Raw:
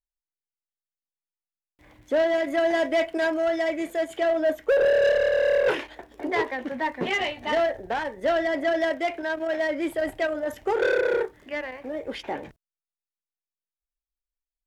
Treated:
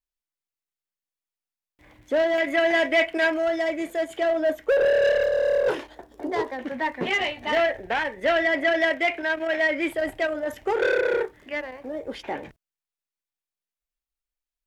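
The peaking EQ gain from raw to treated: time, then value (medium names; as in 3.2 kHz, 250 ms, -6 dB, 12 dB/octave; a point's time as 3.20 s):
peaking EQ 2.3 kHz 1.1 oct
+2 dB
from 2.38 s +10 dB
from 3.38 s +1 dB
from 5.24 s -8 dB
from 6.59 s +2.5 dB
from 7.55 s +10 dB
from 9.93 s +3 dB
from 11.60 s -5 dB
from 12.23 s +3 dB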